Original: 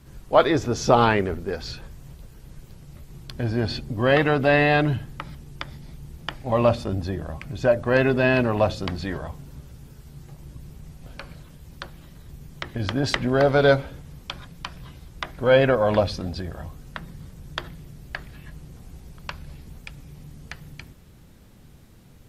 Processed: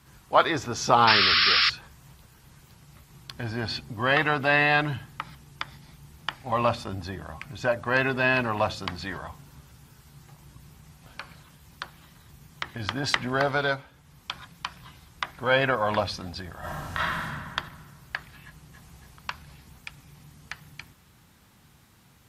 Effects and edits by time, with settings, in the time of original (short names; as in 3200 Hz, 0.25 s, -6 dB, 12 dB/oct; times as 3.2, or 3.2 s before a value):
1.07–1.7 painted sound noise 1100–5500 Hz -21 dBFS
13.42–14.36 dip -9.5 dB, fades 0.43 s
16.59–17.24 reverb throw, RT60 1.8 s, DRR -12 dB
18.45–18.86 echo throw 0.28 s, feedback 55%, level -5 dB
whole clip: HPF 67 Hz; resonant low shelf 710 Hz -7 dB, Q 1.5